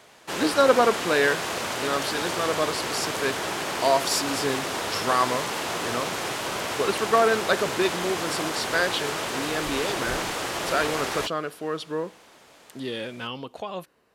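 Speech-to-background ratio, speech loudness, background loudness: 2.0 dB, -26.5 LUFS, -28.5 LUFS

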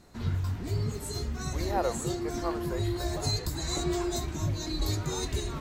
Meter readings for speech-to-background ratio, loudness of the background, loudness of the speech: -5.0 dB, -32.0 LUFS, -37.0 LUFS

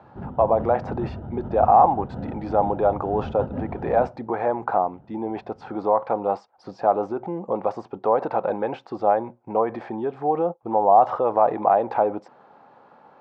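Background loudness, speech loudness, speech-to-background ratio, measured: -34.5 LUFS, -23.0 LUFS, 11.5 dB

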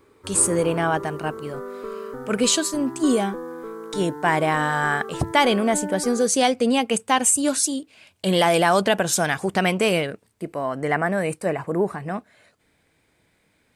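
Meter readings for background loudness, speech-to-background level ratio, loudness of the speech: -34.0 LUFS, 12.5 dB, -21.5 LUFS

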